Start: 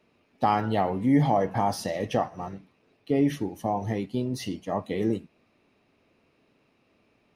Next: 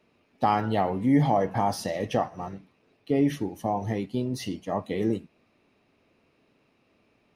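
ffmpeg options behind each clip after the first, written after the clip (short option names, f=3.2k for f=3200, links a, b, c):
-af anull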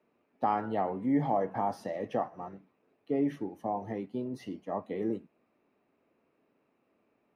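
-filter_complex "[0:a]acrossover=split=180 2000:gain=0.251 1 0.2[a][b][c];[a][b][c]amix=inputs=3:normalize=0,volume=-5dB"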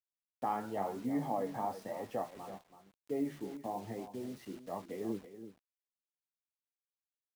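-af "flanger=delay=7:depth=8.7:regen=50:speed=1:shape=triangular,acrusher=bits=8:mix=0:aa=0.000001,aecho=1:1:331:0.251,volume=-2.5dB"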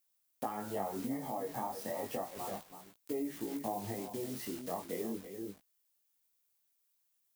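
-af "aemphasis=mode=production:type=50kf,acompressor=threshold=-42dB:ratio=6,flanger=delay=17:depth=6.3:speed=0.32,volume=10dB"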